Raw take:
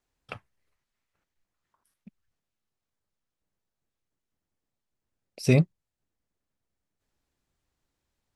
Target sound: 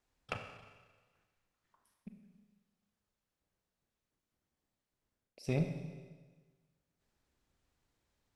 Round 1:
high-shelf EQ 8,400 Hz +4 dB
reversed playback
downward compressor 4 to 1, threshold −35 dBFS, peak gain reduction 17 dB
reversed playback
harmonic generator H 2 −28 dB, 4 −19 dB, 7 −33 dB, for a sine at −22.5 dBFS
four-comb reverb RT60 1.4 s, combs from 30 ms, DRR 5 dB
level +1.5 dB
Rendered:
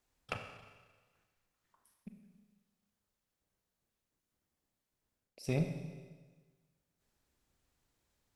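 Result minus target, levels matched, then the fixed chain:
8,000 Hz band +3.5 dB
high-shelf EQ 8,400 Hz −5.5 dB
reversed playback
downward compressor 4 to 1, threshold −35 dBFS, peak gain reduction 17 dB
reversed playback
harmonic generator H 2 −28 dB, 4 −19 dB, 7 −33 dB, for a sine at −22.5 dBFS
four-comb reverb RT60 1.4 s, combs from 30 ms, DRR 5 dB
level +1.5 dB

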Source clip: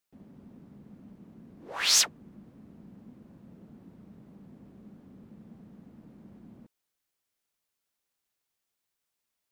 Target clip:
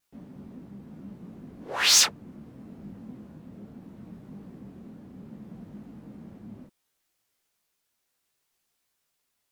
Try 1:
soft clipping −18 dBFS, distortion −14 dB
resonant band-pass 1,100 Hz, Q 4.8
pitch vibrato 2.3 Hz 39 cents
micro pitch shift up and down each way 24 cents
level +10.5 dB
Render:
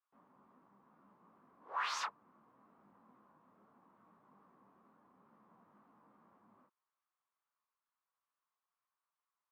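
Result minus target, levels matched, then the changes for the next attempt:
1,000 Hz band +15.0 dB
remove: resonant band-pass 1,100 Hz, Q 4.8

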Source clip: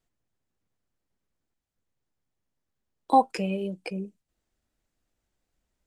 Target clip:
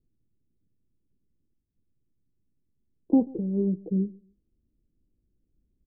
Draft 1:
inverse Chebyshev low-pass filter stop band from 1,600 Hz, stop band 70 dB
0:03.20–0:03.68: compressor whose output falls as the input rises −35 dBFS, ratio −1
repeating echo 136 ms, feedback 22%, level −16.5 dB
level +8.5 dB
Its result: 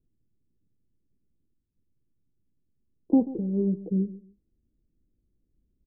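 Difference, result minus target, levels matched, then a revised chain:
echo-to-direct +7 dB
inverse Chebyshev low-pass filter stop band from 1,600 Hz, stop band 70 dB
0:03.20–0:03.68: compressor whose output falls as the input rises −35 dBFS, ratio −1
repeating echo 136 ms, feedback 22%, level −23.5 dB
level +8.5 dB

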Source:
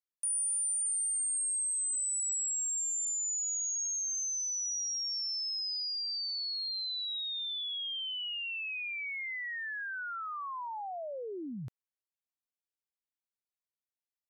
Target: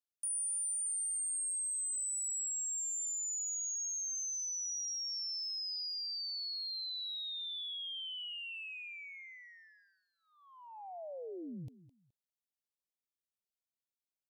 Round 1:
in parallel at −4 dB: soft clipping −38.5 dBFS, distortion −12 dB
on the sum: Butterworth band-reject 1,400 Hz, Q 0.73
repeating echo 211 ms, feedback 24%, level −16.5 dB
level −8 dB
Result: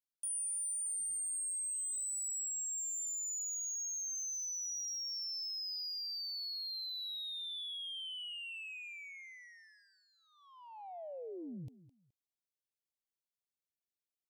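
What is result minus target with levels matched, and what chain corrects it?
soft clipping: distortion +13 dB
in parallel at −4 dB: soft clipping −28.5 dBFS, distortion −24 dB
on the sum: Butterworth band-reject 1,400 Hz, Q 0.73
repeating echo 211 ms, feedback 24%, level −16.5 dB
level −8 dB

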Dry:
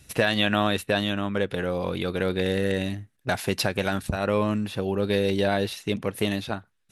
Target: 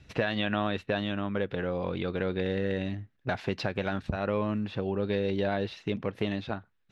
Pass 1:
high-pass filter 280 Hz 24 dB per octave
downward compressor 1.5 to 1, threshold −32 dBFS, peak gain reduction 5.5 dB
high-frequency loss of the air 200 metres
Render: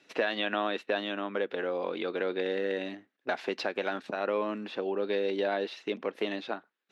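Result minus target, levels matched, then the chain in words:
250 Hz band −4.0 dB
downward compressor 1.5 to 1, threshold −32 dBFS, peak gain reduction 5.5 dB
high-frequency loss of the air 200 metres

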